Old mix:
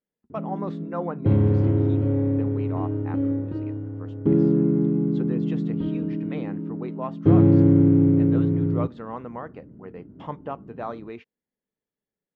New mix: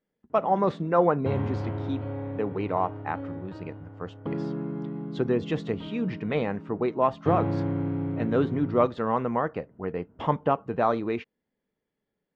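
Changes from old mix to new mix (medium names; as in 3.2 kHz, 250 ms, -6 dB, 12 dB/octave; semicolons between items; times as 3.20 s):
speech +9.0 dB; background: add resonant low shelf 540 Hz -11 dB, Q 1.5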